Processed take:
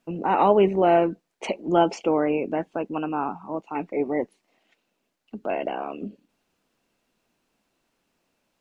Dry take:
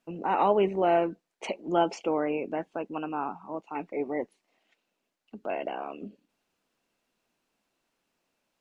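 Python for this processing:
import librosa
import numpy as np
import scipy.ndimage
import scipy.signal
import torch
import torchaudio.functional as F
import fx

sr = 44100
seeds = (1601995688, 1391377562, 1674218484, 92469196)

y = fx.low_shelf(x, sr, hz=320.0, db=5.0)
y = F.gain(torch.from_numpy(y), 4.0).numpy()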